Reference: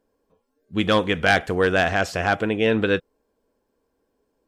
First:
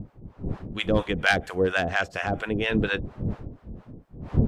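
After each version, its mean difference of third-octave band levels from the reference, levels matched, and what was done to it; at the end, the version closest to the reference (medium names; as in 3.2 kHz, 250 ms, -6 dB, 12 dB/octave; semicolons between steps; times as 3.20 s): 5.0 dB: wind noise 190 Hz -28 dBFS; harmonic tremolo 4.3 Hz, depth 100%, crossover 680 Hz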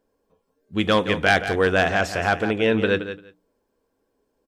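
2.0 dB: hum notches 60/120/180/240/300 Hz; feedback delay 172 ms, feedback 15%, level -11 dB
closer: second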